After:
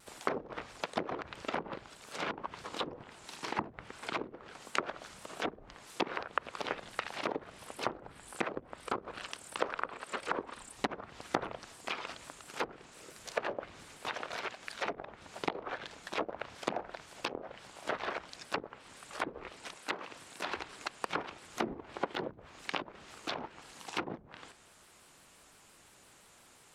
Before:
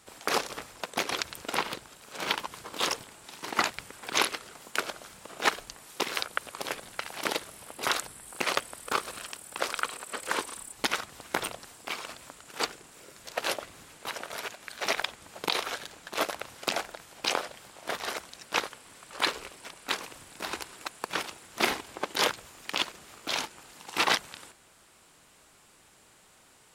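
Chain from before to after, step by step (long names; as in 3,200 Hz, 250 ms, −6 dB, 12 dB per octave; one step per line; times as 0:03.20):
treble cut that deepens with the level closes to 320 Hz, closed at −24.5 dBFS
0:19.75–0:20.56: high-pass filter 180 Hz 6 dB per octave
pitch modulation by a square or saw wave square 5.8 Hz, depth 100 cents
level −1 dB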